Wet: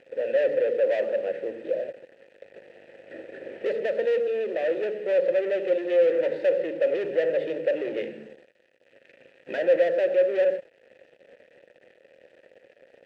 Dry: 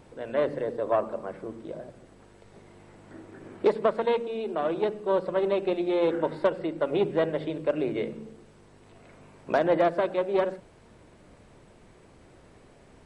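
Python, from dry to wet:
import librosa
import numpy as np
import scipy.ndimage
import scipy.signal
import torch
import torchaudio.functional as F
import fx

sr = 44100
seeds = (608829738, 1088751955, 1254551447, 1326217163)

y = fx.band_shelf(x, sr, hz=600.0, db=-11.0, octaves=1.1, at=(7.99, 9.58))
y = fx.leveller(y, sr, passes=5)
y = fx.vowel_filter(y, sr, vowel='e')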